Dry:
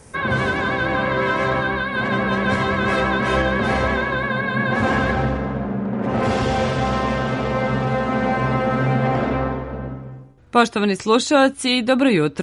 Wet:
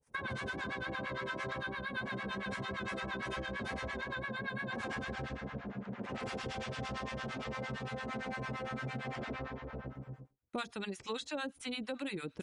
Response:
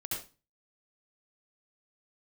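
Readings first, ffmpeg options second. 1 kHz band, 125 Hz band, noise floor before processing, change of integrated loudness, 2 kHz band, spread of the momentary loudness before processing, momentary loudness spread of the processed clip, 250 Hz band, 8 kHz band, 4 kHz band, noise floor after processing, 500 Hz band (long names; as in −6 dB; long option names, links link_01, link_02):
−21.0 dB, −20.5 dB, −38 dBFS, −20.0 dB, −17.5 dB, 7 LU, 4 LU, −21.5 dB, −19.0 dB, −17.0 dB, −63 dBFS, −22.0 dB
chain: -filter_complex "[0:a]agate=range=-33dB:threshold=-33dB:ratio=3:detection=peak,acrossover=split=790[link_01][link_02];[link_01]aeval=exprs='val(0)*(1-1/2+1/2*cos(2*PI*8.8*n/s))':channel_layout=same[link_03];[link_02]aeval=exprs='val(0)*(1-1/2-1/2*cos(2*PI*8.8*n/s))':channel_layout=same[link_04];[link_03][link_04]amix=inputs=2:normalize=0,acrossover=split=1700|4100[link_05][link_06][link_07];[link_05]acompressor=threshold=-36dB:ratio=4[link_08];[link_06]acompressor=threshold=-41dB:ratio=4[link_09];[link_07]acompressor=threshold=-50dB:ratio=4[link_10];[link_08][link_09][link_10]amix=inputs=3:normalize=0,volume=-4.5dB"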